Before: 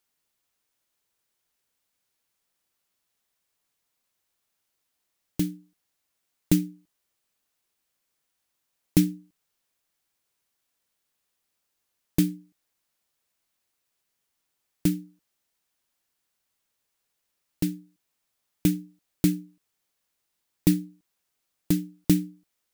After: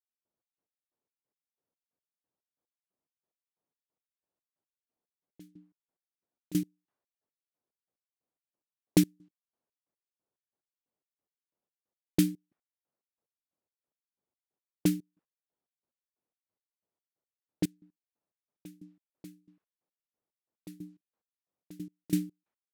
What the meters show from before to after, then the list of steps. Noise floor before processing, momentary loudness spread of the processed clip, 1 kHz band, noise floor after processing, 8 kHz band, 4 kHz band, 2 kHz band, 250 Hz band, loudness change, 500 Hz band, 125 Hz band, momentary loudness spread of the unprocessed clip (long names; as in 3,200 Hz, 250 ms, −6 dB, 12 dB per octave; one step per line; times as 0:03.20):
−79 dBFS, 20 LU, can't be measured, below −85 dBFS, −5.5 dB, −5.0 dB, −5.0 dB, −6.5 dB, −4.5 dB, −4.5 dB, −8.5 dB, 14 LU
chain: low-pass that shuts in the quiet parts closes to 610 Hz, open at −22.5 dBFS
high-pass filter 210 Hz 6 dB per octave
gate pattern "...xx..x" 181 BPM −24 dB